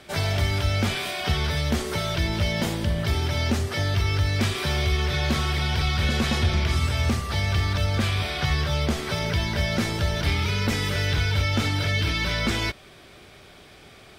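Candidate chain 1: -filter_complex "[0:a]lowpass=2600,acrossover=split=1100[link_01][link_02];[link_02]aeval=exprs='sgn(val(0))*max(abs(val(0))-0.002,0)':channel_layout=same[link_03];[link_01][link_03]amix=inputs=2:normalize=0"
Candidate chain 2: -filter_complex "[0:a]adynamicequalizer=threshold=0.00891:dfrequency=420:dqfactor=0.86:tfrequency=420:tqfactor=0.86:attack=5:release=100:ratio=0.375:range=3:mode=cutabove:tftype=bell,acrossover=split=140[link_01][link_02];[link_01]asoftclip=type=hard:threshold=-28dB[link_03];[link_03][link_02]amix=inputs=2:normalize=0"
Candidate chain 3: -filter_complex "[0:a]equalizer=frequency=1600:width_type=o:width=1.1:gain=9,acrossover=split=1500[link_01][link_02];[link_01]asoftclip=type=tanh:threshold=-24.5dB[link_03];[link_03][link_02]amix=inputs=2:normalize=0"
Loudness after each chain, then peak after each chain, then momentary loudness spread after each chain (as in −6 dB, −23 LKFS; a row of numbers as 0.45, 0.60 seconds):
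−25.5, −26.5, −24.0 LKFS; −12.5, −13.0, −13.0 dBFS; 3, 3, 3 LU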